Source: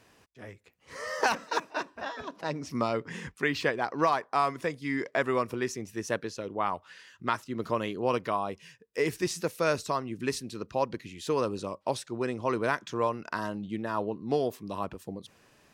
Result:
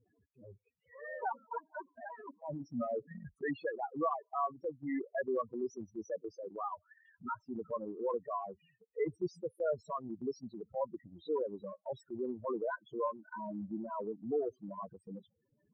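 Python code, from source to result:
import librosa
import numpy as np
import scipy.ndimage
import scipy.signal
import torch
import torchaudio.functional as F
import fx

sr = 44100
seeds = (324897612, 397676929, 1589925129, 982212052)

y = fx.spec_topn(x, sr, count=4)
y = fx.transient(y, sr, attack_db=-3, sustain_db=-7)
y = y * librosa.db_to_amplitude(-3.0)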